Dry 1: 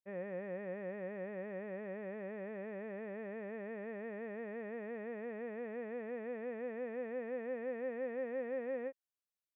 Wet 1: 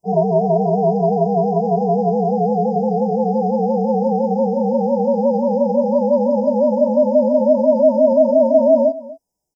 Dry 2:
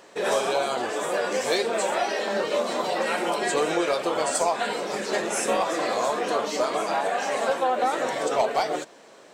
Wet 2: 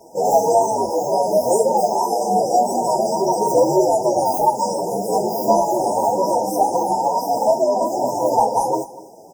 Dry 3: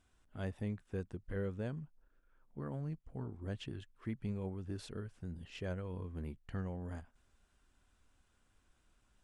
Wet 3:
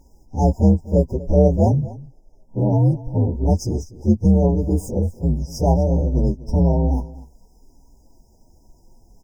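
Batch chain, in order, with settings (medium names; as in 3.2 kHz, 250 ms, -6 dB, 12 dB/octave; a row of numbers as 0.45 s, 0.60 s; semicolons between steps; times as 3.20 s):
frequency axis rescaled in octaves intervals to 125%; FFT band-reject 980–4900 Hz; treble shelf 8 kHz -8 dB; delay 244 ms -18.5 dB; peak normalisation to -3 dBFS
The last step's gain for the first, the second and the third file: +29.0 dB, +12.5 dB, +26.0 dB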